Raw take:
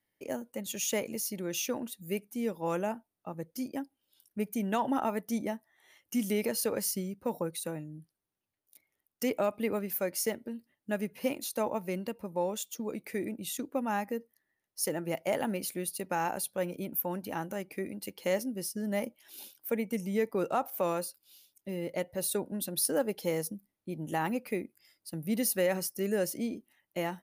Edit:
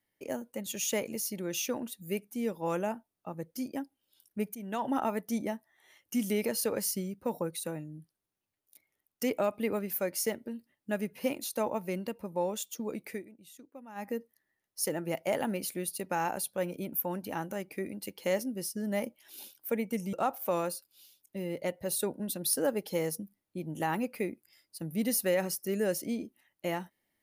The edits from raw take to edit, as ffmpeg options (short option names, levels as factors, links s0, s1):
-filter_complex "[0:a]asplit=5[s0][s1][s2][s3][s4];[s0]atrim=end=4.55,asetpts=PTS-STARTPTS,afade=t=out:st=4.546:d=0.004:c=hsin:silence=0.199526[s5];[s1]atrim=start=4.55:end=13.23,asetpts=PTS-STARTPTS,afade=t=in:d=0.42:silence=0.199526,afade=t=out:st=8.51:d=0.17:c=qsin:silence=0.149624[s6];[s2]atrim=start=13.23:end=13.95,asetpts=PTS-STARTPTS,volume=0.15[s7];[s3]atrim=start=13.95:end=20.132,asetpts=PTS-STARTPTS,afade=t=in:d=0.17:c=qsin:silence=0.149624[s8];[s4]atrim=start=20.448[s9];[s5][s6][s7][s8]concat=n=4:v=0:a=1[s10];[s10][s9]acrossfade=d=0.004:c1=hsin:c2=hsin"